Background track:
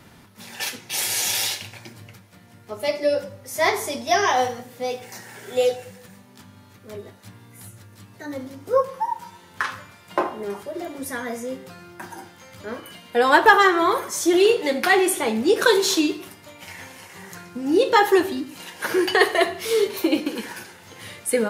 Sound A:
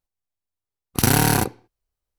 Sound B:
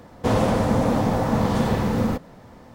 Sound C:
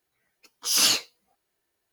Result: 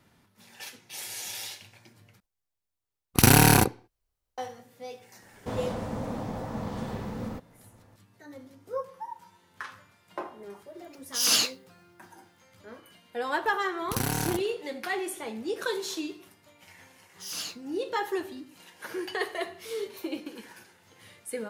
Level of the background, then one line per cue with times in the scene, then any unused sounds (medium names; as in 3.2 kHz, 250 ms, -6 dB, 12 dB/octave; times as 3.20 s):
background track -14 dB
2.20 s: replace with A + rattle on loud lows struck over -19 dBFS, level -15 dBFS
5.22 s: add B -13.5 dB
10.49 s: add C -2.5 dB
12.93 s: add A -12 dB
16.55 s: add C -15.5 dB